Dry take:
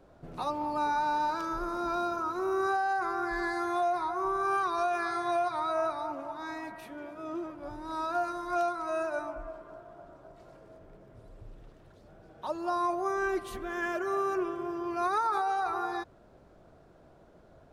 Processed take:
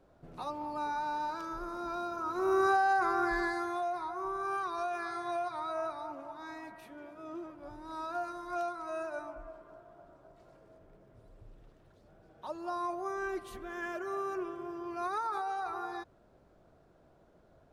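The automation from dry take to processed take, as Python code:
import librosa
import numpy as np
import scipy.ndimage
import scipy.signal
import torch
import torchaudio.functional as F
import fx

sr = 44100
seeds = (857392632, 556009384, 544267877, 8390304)

y = fx.gain(x, sr, db=fx.line((2.11, -6.0), (2.52, 2.0), (3.28, 2.0), (3.8, -6.0)))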